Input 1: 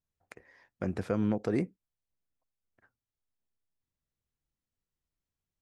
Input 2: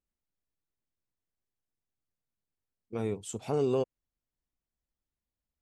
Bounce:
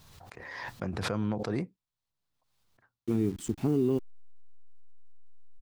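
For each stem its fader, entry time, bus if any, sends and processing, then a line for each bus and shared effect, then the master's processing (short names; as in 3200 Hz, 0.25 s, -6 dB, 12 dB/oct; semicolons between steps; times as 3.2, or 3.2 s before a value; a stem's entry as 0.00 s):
-5.5 dB, 0.00 s, no send, graphic EQ 125/1000/4000 Hz +7/+8/+8 dB; backwards sustainer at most 29 dB/s
-1.0 dB, 0.15 s, no send, level-crossing sampler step -43.5 dBFS; resonant low shelf 410 Hz +8.5 dB, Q 3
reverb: off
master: limiter -18.5 dBFS, peak gain reduction 6.5 dB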